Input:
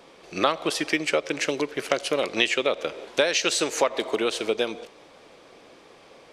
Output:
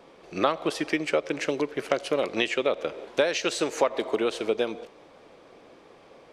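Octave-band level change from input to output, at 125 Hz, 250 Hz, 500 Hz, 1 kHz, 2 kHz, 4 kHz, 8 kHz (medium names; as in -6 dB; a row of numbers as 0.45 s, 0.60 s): 0.0 dB, 0.0 dB, -0.5 dB, -1.5 dB, -4.5 dB, -6.0 dB, -8.0 dB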